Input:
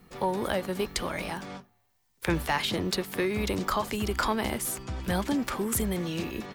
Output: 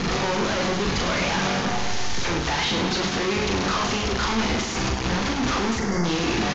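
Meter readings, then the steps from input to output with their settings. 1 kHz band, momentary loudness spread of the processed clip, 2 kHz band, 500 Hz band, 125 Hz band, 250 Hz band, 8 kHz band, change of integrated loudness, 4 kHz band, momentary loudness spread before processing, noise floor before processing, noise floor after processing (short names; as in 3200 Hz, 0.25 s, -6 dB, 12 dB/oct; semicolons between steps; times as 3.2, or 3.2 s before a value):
+6.5 dB, 3 LU, +8.5 dB, +5.0 dB, +7.0 dB, +6.0 dB, +5.5 dB, +6.5 dB, +10.0 dB, 6 LU, -70 dBFS, -26 dBFS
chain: infinite clipping; steep low-pass 6800 Hz 96 dB/oct; notch 600 Hz, Q 14; spectral delete 5.78–6.04, 2200–4500 Hz; reverse bouncing-ball echo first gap 40 ms, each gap 1.6×, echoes 5; gain +5.5 dB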